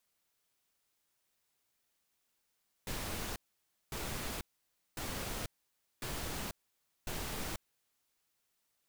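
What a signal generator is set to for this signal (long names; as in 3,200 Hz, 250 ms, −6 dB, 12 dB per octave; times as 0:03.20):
noise bursts pink, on 0.49 s, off 0.56 s, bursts 5, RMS −39.5 dBFS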